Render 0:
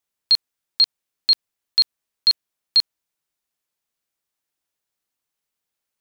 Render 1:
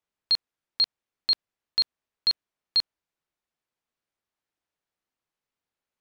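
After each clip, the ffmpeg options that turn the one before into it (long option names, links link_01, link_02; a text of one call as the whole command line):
ffmpeg -i in.wav -af "aemphasis=mode=reproduction:type=75kf" out.wav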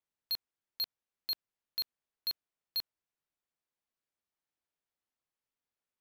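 ffmpeg -i in.wav -af "asoftclip=type=hard:threshold=-24dB,volume=-6.5dB" out.wav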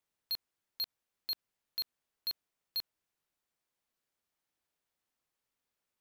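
ffmpeg -i in.wav -af "alimiter=level_in=13dB:limit=-24dB:level=0:latency=1,volume=-13dB,volume=5dB" out.wav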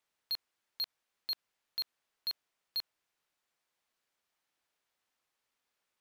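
ffmpeg -i in.wav -filter_complex "[0:a]asplit=2[link_01][link_02];[link_02]highpass=frequency=720:poles=1,volume=7dB,asoftclip=type=tanh:threshold=-31.5dB[link_03];[link_01][link_03]amix=inputs=2:normalize=0,lowpass=frequency=5100:poles=1,volume=-6dB,volume=2.5dB" out.wav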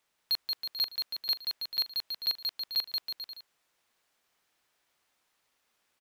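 ffmpeg -i in.wav -af "aecho=1:1:180|324|439.2|531.4|605.1:0.631|0.398|0.251|0.158|0.1,volume=6.5dB" out.wav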